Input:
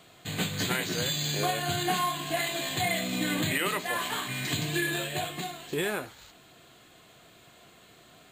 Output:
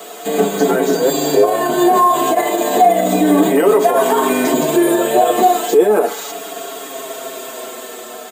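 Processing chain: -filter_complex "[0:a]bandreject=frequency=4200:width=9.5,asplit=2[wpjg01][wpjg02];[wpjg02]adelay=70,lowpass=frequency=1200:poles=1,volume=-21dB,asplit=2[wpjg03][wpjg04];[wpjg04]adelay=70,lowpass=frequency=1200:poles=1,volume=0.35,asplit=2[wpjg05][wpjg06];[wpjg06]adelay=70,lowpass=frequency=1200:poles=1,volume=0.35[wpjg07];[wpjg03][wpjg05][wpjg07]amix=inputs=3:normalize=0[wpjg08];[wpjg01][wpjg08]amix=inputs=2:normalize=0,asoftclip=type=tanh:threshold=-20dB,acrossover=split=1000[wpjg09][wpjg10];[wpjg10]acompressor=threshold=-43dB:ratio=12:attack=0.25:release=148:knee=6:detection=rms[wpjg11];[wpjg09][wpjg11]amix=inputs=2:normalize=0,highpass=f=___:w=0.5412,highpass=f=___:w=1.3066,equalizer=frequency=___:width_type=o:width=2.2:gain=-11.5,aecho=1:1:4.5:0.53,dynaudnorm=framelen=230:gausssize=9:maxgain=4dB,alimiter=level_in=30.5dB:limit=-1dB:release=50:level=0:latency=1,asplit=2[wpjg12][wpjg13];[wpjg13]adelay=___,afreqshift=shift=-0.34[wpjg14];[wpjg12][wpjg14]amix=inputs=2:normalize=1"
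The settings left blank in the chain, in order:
330, 330, 2500, 6.5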